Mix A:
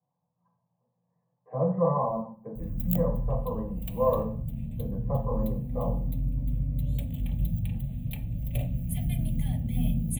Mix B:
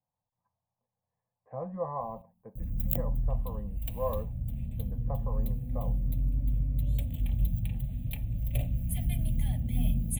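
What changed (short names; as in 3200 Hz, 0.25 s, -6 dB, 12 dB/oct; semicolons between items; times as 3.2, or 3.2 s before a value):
speech: send off; background: send -6.0 dB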